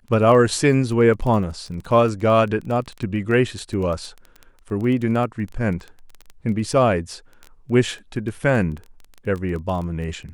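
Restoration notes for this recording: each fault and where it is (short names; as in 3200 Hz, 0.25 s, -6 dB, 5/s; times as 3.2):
crackle 16/s -27 dBFS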